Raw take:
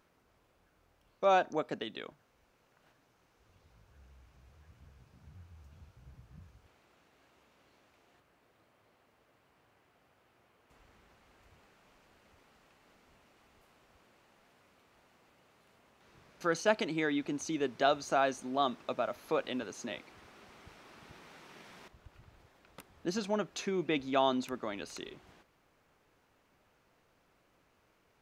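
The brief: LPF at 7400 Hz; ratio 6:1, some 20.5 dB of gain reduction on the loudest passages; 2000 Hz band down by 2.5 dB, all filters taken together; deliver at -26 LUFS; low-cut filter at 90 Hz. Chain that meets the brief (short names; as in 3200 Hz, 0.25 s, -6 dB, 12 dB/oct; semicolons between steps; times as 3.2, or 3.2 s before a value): HPF 90 Hz; LPF 7400 Hz; bell 2000 Hz -3.5 dB; compressor 6:1, threshold -46 dBFS; gain +26 dB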